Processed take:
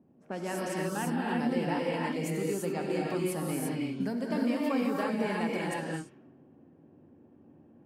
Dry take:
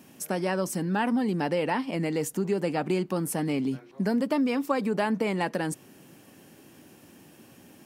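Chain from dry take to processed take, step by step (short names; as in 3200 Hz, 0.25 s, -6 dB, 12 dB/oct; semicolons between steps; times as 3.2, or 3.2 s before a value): non-linear reverb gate 0.37 s rising, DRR -3.5 dB; low-pass opened by the level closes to 540 Hz, open at -20.5 dBFS; gain -8.5 dB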